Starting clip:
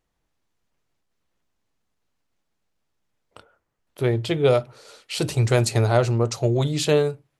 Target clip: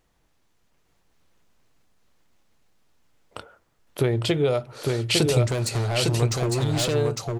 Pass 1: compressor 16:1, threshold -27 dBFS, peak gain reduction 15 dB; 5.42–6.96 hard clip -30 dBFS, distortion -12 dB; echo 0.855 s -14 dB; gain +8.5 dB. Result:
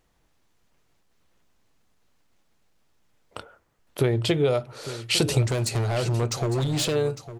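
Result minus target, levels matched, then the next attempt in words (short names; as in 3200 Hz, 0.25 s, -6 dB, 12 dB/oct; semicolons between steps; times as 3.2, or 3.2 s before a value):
echo-to-direct -11 dB
compressor 16:1, threshold -27 dBFS, peak gain reduction 15 dB; 5.42–6.96 hard clip -30 dBFS, distortion -12 dB; echo 0.855 s -3 dB; gain +8.5 dB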